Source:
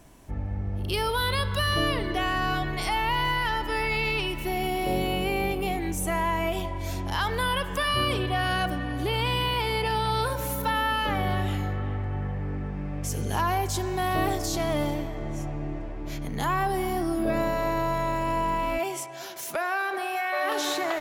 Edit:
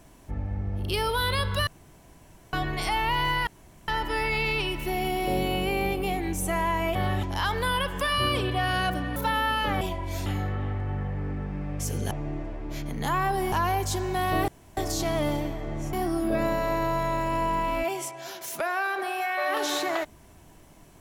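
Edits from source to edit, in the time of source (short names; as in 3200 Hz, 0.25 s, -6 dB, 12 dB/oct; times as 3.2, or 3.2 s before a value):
1.67–2.53 room tone
3.47 insert room tone 0.41 s
6.54–6.99 swap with 11.22–11.5
8.92–10.57 cut
14.31 insert room tone 0.29 s
15.47–16.88 move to 13.35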